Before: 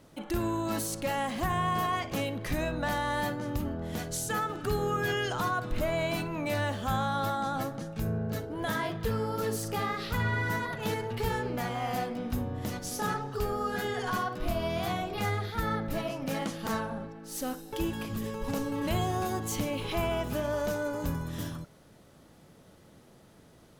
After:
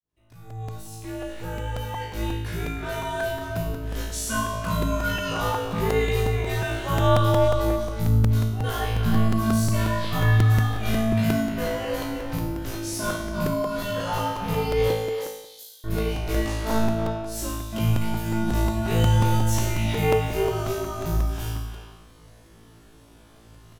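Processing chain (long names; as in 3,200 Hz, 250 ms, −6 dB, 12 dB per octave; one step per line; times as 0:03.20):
fade in at the beginning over 4.43 s
0:14.92–0:15.84: inverse Chebyshev high-pass filter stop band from 1,100 Hz, stop band 70 dB
on a send: flutter between parallel walls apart 3.1 metres, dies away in 0.85 s
on the sum: frequency shifter −220 Hz
far-end echo of a speakerphone 320 ms, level −6 dB
regular buffer underruns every 0.18 s, samples 128, repeat, from 0:00.32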